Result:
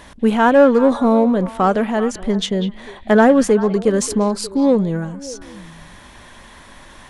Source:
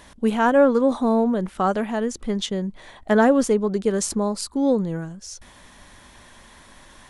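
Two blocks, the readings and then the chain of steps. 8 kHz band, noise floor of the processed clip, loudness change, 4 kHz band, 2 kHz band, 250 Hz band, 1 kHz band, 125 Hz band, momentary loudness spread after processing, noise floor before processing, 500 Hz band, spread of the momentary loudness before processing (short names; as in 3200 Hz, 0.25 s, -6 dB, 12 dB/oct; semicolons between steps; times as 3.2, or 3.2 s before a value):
+2.5 dB, -43 dBFS, +5.5 dB, +5.0 dB, +5.5 dB, +5.5 dB, +5.5 dB, +6.0 dB, 14 LU, -49 dBFS, +5.5 dB, 16 LU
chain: tone controls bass 0 dB, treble -4 dB; in parallel at -10 dB: hard clip -21.5 dBFS, distortion -6 dB; on the sum: delay with a stepping band-pass 0.194 s, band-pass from 2900 Hz, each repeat -1.4 oct, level -9.5 dB; gain +4 dB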